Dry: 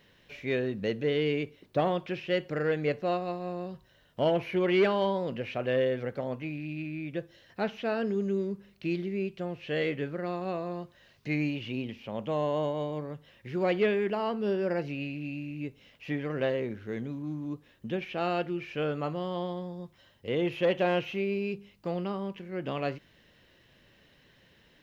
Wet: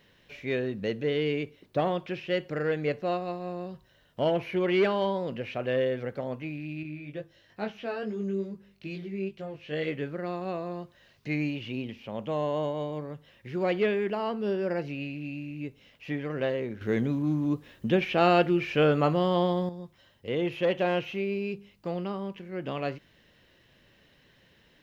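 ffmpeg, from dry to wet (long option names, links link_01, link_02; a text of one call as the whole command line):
ffmpeg -i in.wav -filter_complex "[0:a]asettb=1/sr,asplit=3[link_01][link_02][link_03];[link_01]atrim=end=6.834[link_04];[link_02]atrim=start=6.83:end=9.88,asetpts=PTS-STARTPTS,afade=type=in:duration=0.004:curve=qsin,afade=type=out:start_time=3.046:duration=0.004:curve=qsin,flanger=delay=18.5:depth=2.5:speed=2.3[link_05];[link_03]atrim=start=9.876[link_06];[link_04][link_05]acrossfade=duration=0.004:curve1=hsin:curve2=qsin[link_07];[link_07][link_06]acrossfade=duration=0.004:curve1=qsin:curve2=hsin,asplit=3[link_08][link_09][link_10];[link_08]atrim=end=16.812[link_11];[link_09]atrim=start=16.808:end=19.692,asetpts=PTS-STARTPTS,volume=8.5dB[link_12];[link_10]atrim=start=19.688[link_13];[link_11][link_12]acrossfade=duration=0.004:curve1=hsin:curve2=hsin[link_14];[link_14][link_13]acrossfade=duration=0.004:curve1=hsin:curve2=hsin" out.wav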